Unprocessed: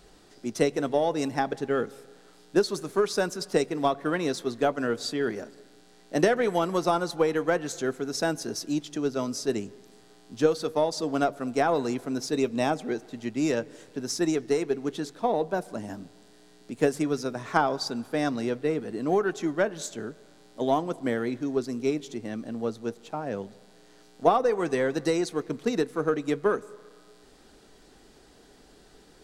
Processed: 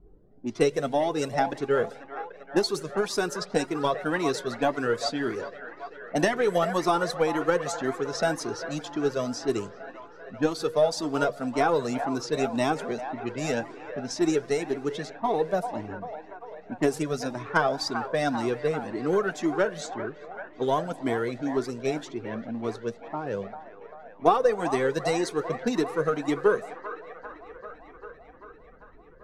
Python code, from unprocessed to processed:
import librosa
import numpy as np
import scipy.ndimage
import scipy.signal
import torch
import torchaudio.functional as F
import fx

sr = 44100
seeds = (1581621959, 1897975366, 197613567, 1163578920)

y = fx.env_lowpass(x, sr, base_hz=330.0, full_db=-25.0)
y = fx.echo_wet_bandpass(y, sr, ms=393, feedback_pct=72, hz=1100.0, wet_db=-9.5)
y = fx.comb_cascade(y, sr, direction='rising', hz=1.9)
y = F.gain(torch.from_numpy(y), 5.5).numpy()